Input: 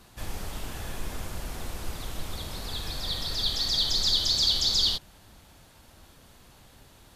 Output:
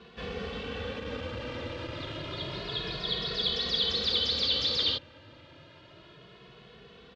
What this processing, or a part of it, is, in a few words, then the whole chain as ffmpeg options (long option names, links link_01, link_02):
barber-pole flanger into a guitar amplifier: -filter_complex "[0:a]asplit=2[link_01][link_02];[link_02]adelay=2.3,afreqshift=0.29[link_03];[link_01][link_03]amix=inputs=2:normalize=1,asoftclip=type=tanh:threshold=-26dB,highpass=100,equalizer=frequency=480:width_type=q:width=4:gain=10,equalizer=frequency=800:width_type=q:width=4:gain=-8,equalizer=frequency=2900:width_type=q:width=4:gain=4,lowpass=frequency=3900:width=0.5412,lowpass=frequency=3900:width=1.3066,volume=6.5dB"